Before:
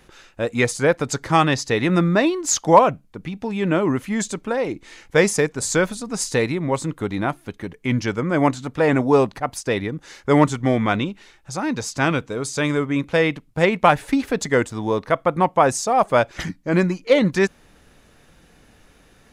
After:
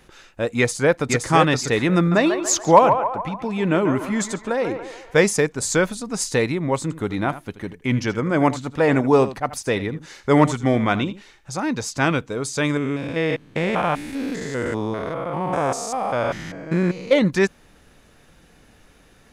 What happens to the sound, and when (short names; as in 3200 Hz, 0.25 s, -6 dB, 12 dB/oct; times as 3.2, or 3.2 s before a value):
0.57–1.3 echo throw 0.52 s, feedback 15%, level -4 dB
1.97–5.17 narrowing echo 0.142 s, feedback 57%, band-pass 970 Hz, level -6 dB
6.82–11.6 echo 80 ms -14.5 dB
12.77–17.13 stepped spectrum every 0.2 s